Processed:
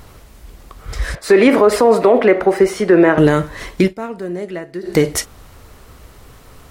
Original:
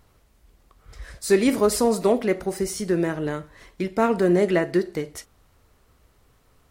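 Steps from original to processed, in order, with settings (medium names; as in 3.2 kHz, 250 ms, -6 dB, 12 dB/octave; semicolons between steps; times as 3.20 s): 1.15–3.18 s: three-band isolator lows -15 dB, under 320 Hz, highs -20 dB, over 2.8 kHz; 3.81–4.95 s: dip -24 dB, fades 0.13 s; loudness maximiser +19 dB; trim -1 dB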